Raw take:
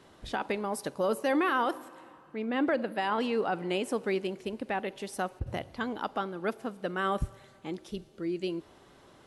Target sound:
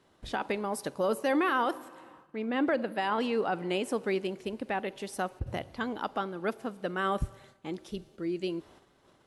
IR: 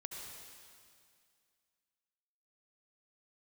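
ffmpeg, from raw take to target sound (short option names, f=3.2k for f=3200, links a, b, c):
-af "agate=range=-9dB:threshold=-55dB:ratio=16:detection=peak"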